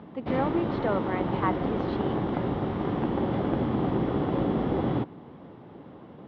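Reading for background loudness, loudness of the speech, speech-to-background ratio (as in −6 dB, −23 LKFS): −28.5 LKFS, −32.0 LKFS, −3.5 dB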